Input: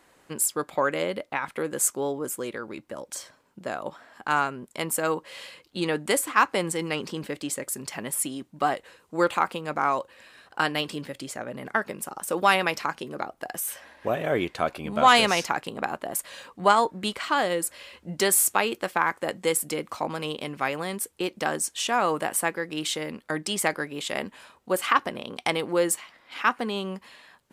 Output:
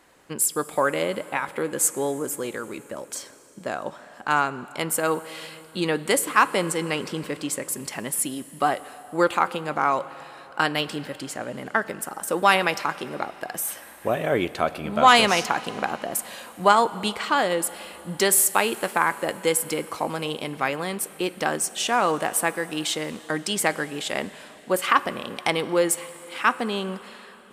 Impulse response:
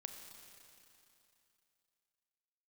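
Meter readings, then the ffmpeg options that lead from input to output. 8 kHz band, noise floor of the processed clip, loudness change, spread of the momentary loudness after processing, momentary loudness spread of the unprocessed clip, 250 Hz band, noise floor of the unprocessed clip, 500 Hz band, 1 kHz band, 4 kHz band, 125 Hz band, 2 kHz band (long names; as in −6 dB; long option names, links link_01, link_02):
+2.5 dB, −46 dBFS, +2.5 dB, 14 LU, 14 LU, +2.5 dB, −61 dBFS, +2.5 dB, +2.5 dB, +2.5 dB, +2.5 dB, +2.5 dB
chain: -filter_complex "[0:a]asplit=2[link_01][link_02];[1:a]atrim=start_sample=2205,asetrate=33075,aresample=44100[link_03];[link_02][link_03]afir=irnorm=-1:irlink=0,volume=-6.5dB[link_04];[link_01][link_04]amix=inputs=2:normalize=0"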